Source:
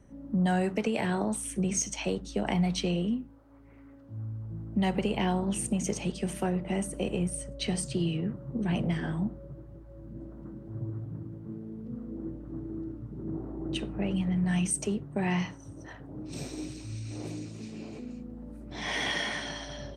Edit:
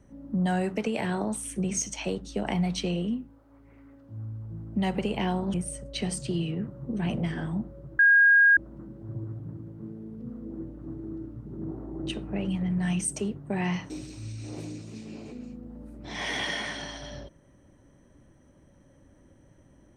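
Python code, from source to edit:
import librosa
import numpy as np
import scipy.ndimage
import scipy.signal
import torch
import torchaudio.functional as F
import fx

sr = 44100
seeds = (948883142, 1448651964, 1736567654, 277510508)

y = fx.edit(x, sr, fx.cut(start_s=5.54, length_s=1.66),
    fx.bleep(start_s=9.65, length_s=0.58, hz=1630.0, db=-14.5),
    fx.cut(start_s=15.56, length_s=1.01), tone=tone)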